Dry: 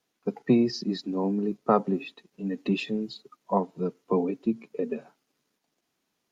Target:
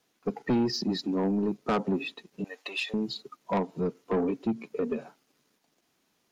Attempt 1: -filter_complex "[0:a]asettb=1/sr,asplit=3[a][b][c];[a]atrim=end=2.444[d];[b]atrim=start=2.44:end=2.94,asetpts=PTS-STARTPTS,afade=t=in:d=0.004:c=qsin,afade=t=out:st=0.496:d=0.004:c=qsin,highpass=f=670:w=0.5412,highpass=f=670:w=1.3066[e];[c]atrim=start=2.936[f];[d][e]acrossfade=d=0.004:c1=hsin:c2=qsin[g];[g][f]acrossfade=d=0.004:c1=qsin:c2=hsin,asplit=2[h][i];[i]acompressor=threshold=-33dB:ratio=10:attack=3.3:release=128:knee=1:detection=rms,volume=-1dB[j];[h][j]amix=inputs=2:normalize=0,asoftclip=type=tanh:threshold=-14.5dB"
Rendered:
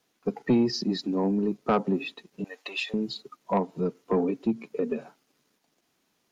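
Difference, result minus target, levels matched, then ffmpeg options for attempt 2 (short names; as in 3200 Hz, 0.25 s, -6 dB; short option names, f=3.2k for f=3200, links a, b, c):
soft clip: distortion -6 dB
-filter_complex "[0:a]asettb=1/sr,asplit=3[a][b][c];[a]atrim=end=2.444[d];[b]atrim=start=2.44:end=2.94,asetpts=PTS-STARTPTS,afade=t=in:d=0.004:c=qsin,afade=t=out:st=0.496:d=0.004:c=qsin,highpass=f=670:w=0.5412,highpass=f=670:w=1.3066[e];[c]atrim=start=2.936[f];[d][e]acrossfade=d=0.004:c1=hsin:c2=qsin[g];[g][f]acrossfade=d=0.004:c1=qsin:c2=hsin,asplit=2[h][i];[i]acompressor=threshold=-33dB:ratio=10:attack=3.3:release=128:knee=1:detection=rms,volume=-1dB[j];[h][j]amix=inputs=2:normalize=0,asoftclip=type=tanh:threshold=-21dB"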